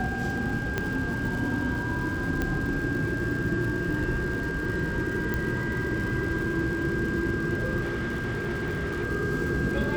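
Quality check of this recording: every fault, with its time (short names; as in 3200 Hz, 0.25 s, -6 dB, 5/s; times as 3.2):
crackle 180/s -35 dBFS
tone 1600 Hz -32 dBFS
0.78 pop -13 dBFS
2.42 pop -15 dBFS
5.34 pop
7.81–9.05 clipped -26 dBFS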